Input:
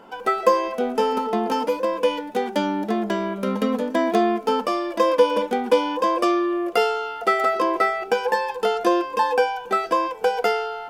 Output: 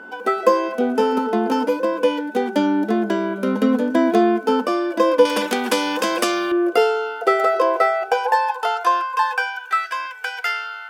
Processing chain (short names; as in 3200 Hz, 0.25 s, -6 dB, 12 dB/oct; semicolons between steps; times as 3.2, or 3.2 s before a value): high-pass sweep 260 Hz -> 1700 Hz, 6.44–9.85; whine 1500 Hz -37 dBFS; 5.25–6.52 spectral compressor 2:1